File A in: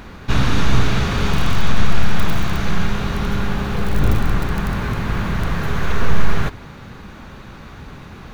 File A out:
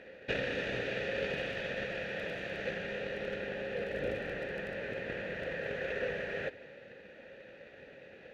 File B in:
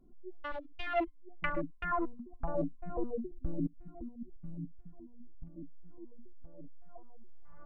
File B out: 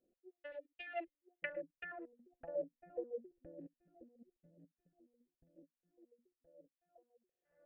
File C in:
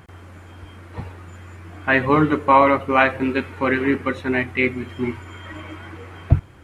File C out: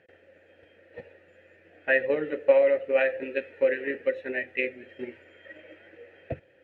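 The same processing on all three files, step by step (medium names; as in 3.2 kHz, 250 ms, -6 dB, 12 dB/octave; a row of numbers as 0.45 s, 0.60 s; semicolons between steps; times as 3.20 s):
transient shaper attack +7 dB, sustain +2 dB; vowel filter e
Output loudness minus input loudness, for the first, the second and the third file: -15.0 LU, -8.5 LU, -6.5 LU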